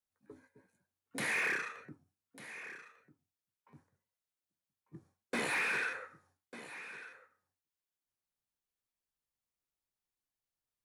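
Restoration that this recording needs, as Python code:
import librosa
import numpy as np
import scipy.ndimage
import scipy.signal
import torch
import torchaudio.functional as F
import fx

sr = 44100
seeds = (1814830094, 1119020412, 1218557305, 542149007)

y = fx.fix_declip(x, sr, threshold_db=-28.5)
y = fx.fix_echo_inverse(y, sr, delay_ms=1197, level_db=-14.5)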